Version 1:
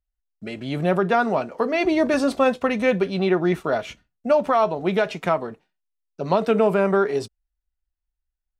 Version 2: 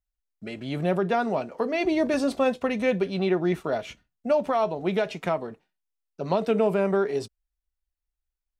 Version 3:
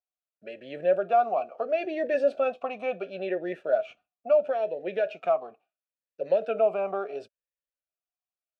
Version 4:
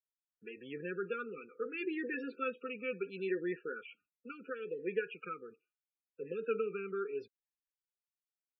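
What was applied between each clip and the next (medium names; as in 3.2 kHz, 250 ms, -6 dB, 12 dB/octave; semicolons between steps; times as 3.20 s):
dynamic bell 1.3 kHz, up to -5 dB, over -33 dBFS, Q 1.5; trim -3.5 dB
talking filter a-e 0.73 Hz; trim +7 dB
brick-wall FIR band-stop 510–1200 Hz; loudest bins only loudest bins 32; trim -3 dB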